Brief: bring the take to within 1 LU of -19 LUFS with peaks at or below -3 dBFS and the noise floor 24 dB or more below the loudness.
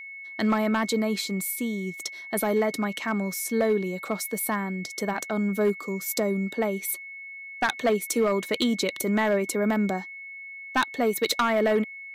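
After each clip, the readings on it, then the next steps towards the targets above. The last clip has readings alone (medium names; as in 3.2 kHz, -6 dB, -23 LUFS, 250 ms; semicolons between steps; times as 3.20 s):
clipped samples 0.8%; clipping level -16.5 dBFS; steady tone 2.2 kHz; tone level -38 dBFS; loudness -26.5 LUFS; peak level -16.5 dBFS; loudness target -19.0 LUFS
-> clip repair -16.5 dBFS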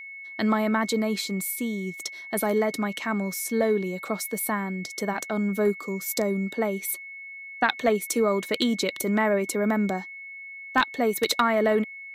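clipped samples 0.0%; steady tone 2.2 kHz; tone level -38 dBFS
-> band-stop 2.2 kHz, Q 30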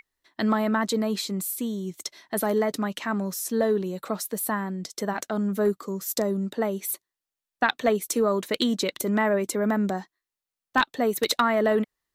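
steady tone not found; loudness -26.5 LUFS; peak level -7.5 dBFS; loudness target -19.0 LUFS
-> trim +7.5 dB; peak limiter -3 dBFS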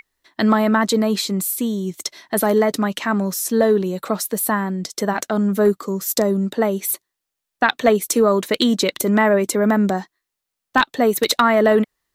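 loudness -19.0 LUFS; peak level -3.0 dBFS; noise floor -82 dBFS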